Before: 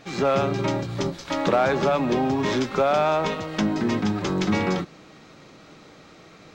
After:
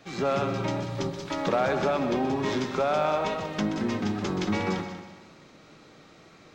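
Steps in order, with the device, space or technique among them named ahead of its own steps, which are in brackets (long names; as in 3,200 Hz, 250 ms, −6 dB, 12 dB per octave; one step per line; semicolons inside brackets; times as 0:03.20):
multi-head tape echo (echo machine with several playback heads 63 ms, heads second and third, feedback 43%, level −11 dB; tape wow and flutter 21 cents)
level −5 dB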